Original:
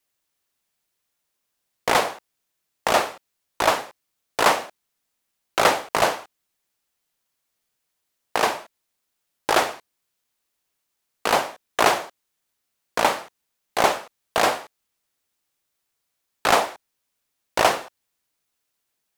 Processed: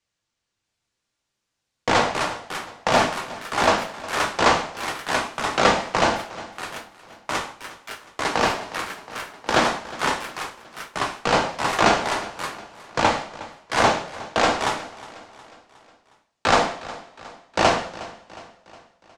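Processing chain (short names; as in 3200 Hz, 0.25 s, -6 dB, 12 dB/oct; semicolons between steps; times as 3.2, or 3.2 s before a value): octaver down 1 oct, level +3 dB; LPF 7300 Hz 24 dB/oct; two-slope reverb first 0.54 s, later 2.6 s, from -27 dB, DRR 3.5 dB; echoes that change speed 0.66 s, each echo +4 st, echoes 3, each echo -6 dB; feedback echo 0.362 s, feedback 52%, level -18 dB; 8.51–9.54 three-band squash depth 70%; gain -1 dB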